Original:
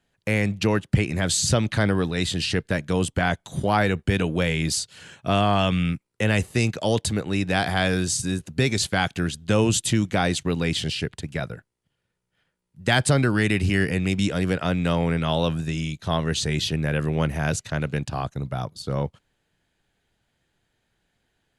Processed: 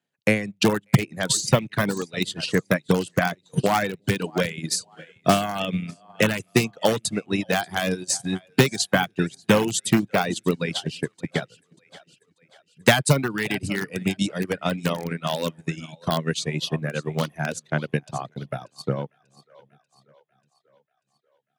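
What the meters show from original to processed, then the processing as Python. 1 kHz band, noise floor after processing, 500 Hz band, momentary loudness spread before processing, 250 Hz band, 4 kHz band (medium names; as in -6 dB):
0.0 dB, -73 dBFS, +1.0 dB, 8 LU, -0.5 dB, -0.5 dB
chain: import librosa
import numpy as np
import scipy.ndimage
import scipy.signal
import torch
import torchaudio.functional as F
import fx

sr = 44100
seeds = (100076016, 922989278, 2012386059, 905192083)

p1 = fx.echo_split(x, sr, split_hz=440.0, low_ms=357, high_ms=589, feedback_pct=52, wet_db=-12.5)
p2 = (np.mod(10.0 ** (11.5 / 20.0) * p1 + 1.0, 2.0) - 1.0) / 10.0 ** (11.5 / 20.0)
p3 = p1 + (p2 * librosa.db_to_amplitude(-6.5))
p4 = fx.dereverb_blind(p3, sr, rt60_s=1.4)
p5 = fx.transient(p4, sr, attack_db=7, sustain_db=-5)
p6 = scipy.signal.sosfilt(scipy.signal.butter(4, 130.0, 'highpass', fs=sr, output='sos'), p5)
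y = fx.upward_expand(p6, sr, threshold_db=-36.0, expansion=1.5)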